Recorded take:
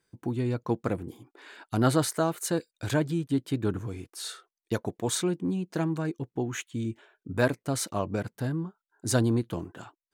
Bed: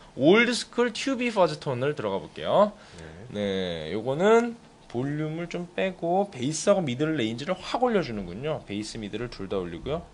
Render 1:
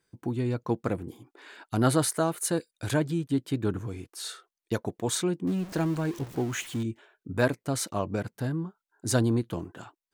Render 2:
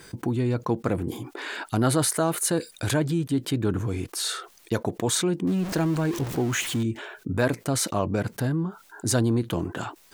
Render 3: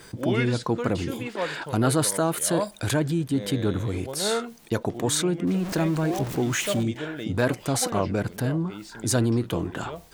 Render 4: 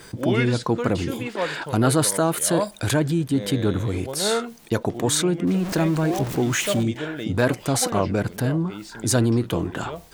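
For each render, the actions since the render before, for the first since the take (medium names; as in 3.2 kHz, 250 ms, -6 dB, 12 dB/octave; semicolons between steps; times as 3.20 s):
1.78–2.98 s: peaking EQ 10 kHz +8.5 dB 0.24 oct; 5.47–6.83 s: jump at every zero crossing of -37.5 dBFS
level flattener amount 50%
add bed -8 dB
trim +3 dB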